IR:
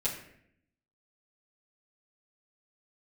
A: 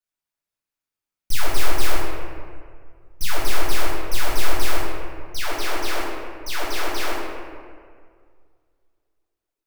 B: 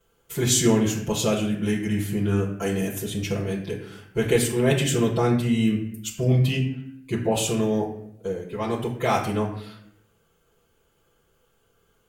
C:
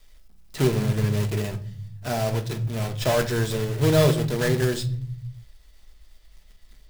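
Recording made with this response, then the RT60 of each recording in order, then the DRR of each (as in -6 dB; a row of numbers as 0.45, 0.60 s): B; 2.0, 0.70, 0.50 s; -9.5, -9.5, 6.5 dB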